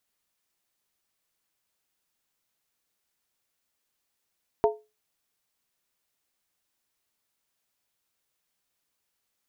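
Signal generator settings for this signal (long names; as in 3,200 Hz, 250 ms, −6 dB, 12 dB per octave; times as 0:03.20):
struck skin, lowest mode 427 Hz, modes 3, decay 0.26 s, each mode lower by 3 dB, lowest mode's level −16 dB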